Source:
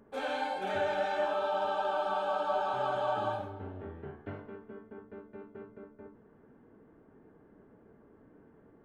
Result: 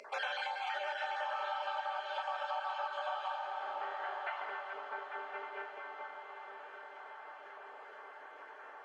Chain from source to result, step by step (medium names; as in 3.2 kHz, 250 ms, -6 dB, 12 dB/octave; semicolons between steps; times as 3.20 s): random holes in the spectrogram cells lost 27%; high-pass 730 Hz 24 dB/octave; band-stop 3.7 kHz, Q 7.1; reverberation RT60 3.5 s, pre-delay 6 ms, DRR 6.5 dB; compression 6:1, threshold -52 dBFS, peak gain reduction 21 dB; treble shelf 2 kHz +9.5 dB; echo that smears into a reverb 1168 ms, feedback 58%, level -10 dB; upward compressor, threshold -58 dBFS; distance through air 130 m; trim +13.5 dB